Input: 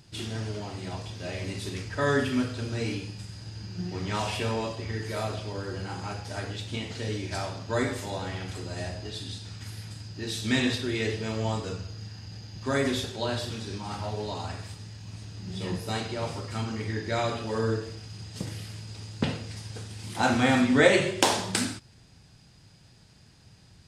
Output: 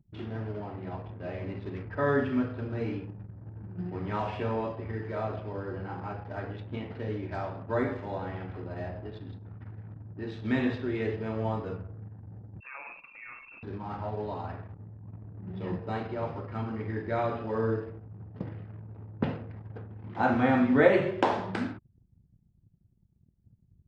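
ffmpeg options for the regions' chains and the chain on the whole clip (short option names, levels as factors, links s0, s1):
-filter_complex "[0:a]asettb=1/sr,asplit=3[s0][s1][s2];[s0]atrim=end=12.604[s3];[s1]atrim=start=12.6:end=13.63,asetpts=PTS-STARTPTS,afade=t=in:d=0.004:c=qsin,afade=t=out:st=1.026:d=0.004:c=qsin,acompressor=threshold=0.02:ratio=4:attack=3.2:release=140:knee=1:detection=peak,lowpass=f=2400:t=q:w=0.5098,lowpass=f=2400:t=q:w=0.6013,lowpass=f=2400:t=q:w=0.9,lowpass=f=2400:t=q:w=2.563,afreqshift=-2800[s4];[s2]atrim=start=13.626[s5];[s3][s4]acrossfade=d=0.004:c1=hsin:c2=qsin[s6];[s6][s5]acrossfade=d=0.004:c1=qsin:c2=hsin,lowpass=1500,anlmdn=0.0158,lowshelf=f=130:g=-5"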